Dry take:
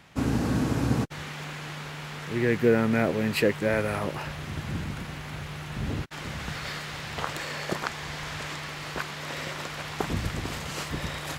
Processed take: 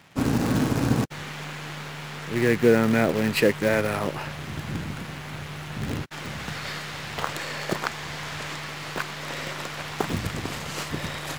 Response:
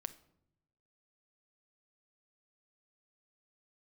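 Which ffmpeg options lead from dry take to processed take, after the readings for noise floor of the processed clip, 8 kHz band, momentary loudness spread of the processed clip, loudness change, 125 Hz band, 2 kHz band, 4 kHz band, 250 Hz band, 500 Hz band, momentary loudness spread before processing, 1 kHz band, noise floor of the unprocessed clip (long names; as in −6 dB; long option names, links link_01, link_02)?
−37 dBFS, +3.0 dB, 13 LU, +2.5 dB, +1.5 dB, +2.5 dB, +2.5 dB, +3.0 dB, +3.0 dB, 12 LU, +2.5 dB, −38 dBFS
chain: -filter_complex "[0:a]highpass=88,asplit=2[link_01][link_02];[link_02]acrusher=bits=5:dc=4:mix=0:aa=0.000001,volume=-7dB[link_03];[link_01][link_03]amix=inputs=2:normalize=0"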